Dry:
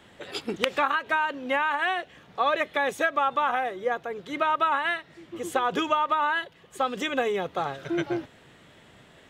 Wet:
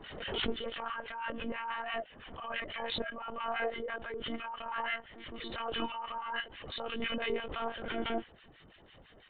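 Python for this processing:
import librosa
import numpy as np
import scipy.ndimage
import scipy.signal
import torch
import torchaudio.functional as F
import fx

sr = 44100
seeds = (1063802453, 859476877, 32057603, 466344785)

y = fx.freq_compress(x, sr, knee_hz=2900.0, ratio=4.0)
y = fx.over_compress(y, sr, threshold_db=-27.0, ratio=-0.5)
y = fx.harmonic_tremolo(y, sr, hz=6.0, depth_pct=100, crossover_hz=1200.0)
y = fx.lpc_monotone(y, sr, seeds[0], pitch_hz=230.0, order=16)
y = fx.pre_swell(y, sr, db_per_s=45.0)
y = F.gain(torch.from_numpy(y), -4.5).numpy()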